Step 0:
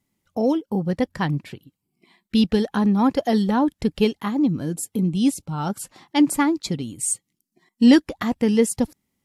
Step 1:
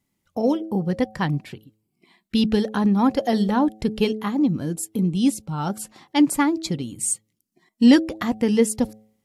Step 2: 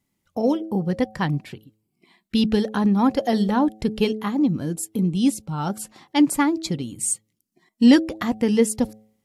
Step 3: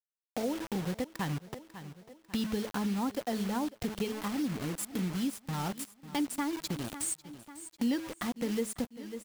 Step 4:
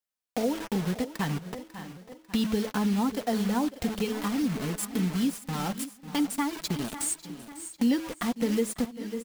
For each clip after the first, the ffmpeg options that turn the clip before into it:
-af "bandreject=f=108.1:t=h:w=4,bandreject=f=216.2:t=h:w=4,bandreject=f=324.3:t=h:w=4,bandreject=f=432.4:t=h:w=4,bandreject=f=540.5:t=h:w=4,bandreject=f=648.6:t=h:w=4,bandreject=f=756.7:t=h:w=4"
-af anull
-af "acrusher=bits=4:mix=0:aa=0.000001,aecho=1:1:546|1092|1638:0.1|0.042|0.0176,acompressor=threshold=-31dB:ratio=2.5,volume=-3.5dB"
-af "flanger=delay=3.7:depth=1.1:regen=-34:speed=0.52:shape=triangular,aecho=1:1:590:0.178,volume=8dB"

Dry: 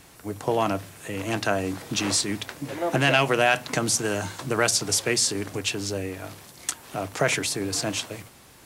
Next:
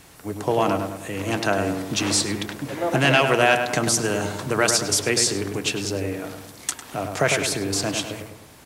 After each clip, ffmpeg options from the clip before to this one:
-filter_complex "[0:a]asplit=2[a][b];[b]adelay=102,lowpass=f=1.8k:p=1,volume=-5dB,asplit=2[c][d];[d]adelay=102,lowpass=f=1.8k:p=1,volume=0.52,asplit=2[e][f];[f]adelay=102,lowpass=f=1.8k:p=1,volume=0.52,asplit=2[g][h];[h]adelay=102,lowpass=f=1.8k:p=1,volume=0.52,asplit=2[i][j];[j]adelay=102,lowpass=f=1.8k:p=1,volume=0.52,asplit=2[k][l];[l]adelay=102,lowpass=f=1.8k:p=1,volume=0.52,asplit=2[m][n];[n]adelay=102,lowpass=f=1.8k:p=1,volume=0.52[o];[a][c][e][g][i][k][m][o]amix=inputs=8:normalize=0,volume=2dB"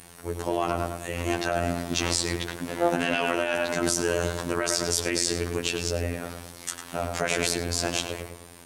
-af "alimiter=limit=-15dB:level=0:latency=1:release=58,aeval=exprs='val(0)+0.01*sin(2*PI*9000*n/s)':c=same,afftfilt=real='hypot(re,im)*cos(PI*b)':imag='0':win_size=2048:overlap=0.75,volume=2.5dB"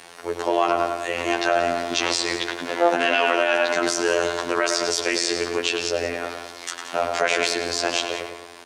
-filter_complex "[0:a]asplit=2[a][b];[b]alimiter=limit=-12.5dB:level=0:latency=1:release=203,volume=-2.5dB[c];[a][c]amix=inputs=2:normalize=0,acrossover=split=340 6500:gain=0.112 1 0.141[d][e][f];[d][e][f]amix=inputs=3:normalize=0,aecho=1:1:177:0.237,volume=3.5dB"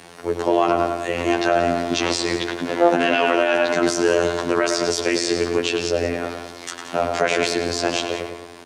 -af "equalizer=f=140:w=0.41:g=12,volume=-1dB"

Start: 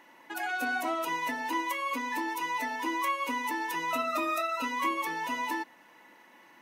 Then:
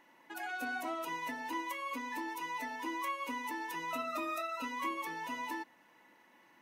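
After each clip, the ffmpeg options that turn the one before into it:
-af "lowshelf=f=140:g=7.5,volume=-7.5dB"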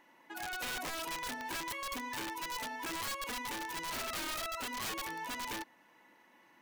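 -af "aeval=exprs='(mod(44.7*val(0)+1,2)-1)/44.7':c=same"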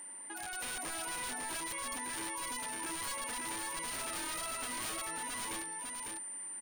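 -af "alimiter=level_in=15.5dB:limit=-24dB:level=0:latency=1,volume=-15.5dB,aeval=exprs='val(0)+0.00398*sin(2*PI*9100*n/s)':c=same,aecho=1:1:551:0.631,volume=3dB"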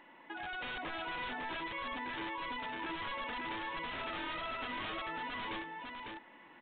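-af "volume=2dB" -ar 8000 -c:a pcm_mulaw

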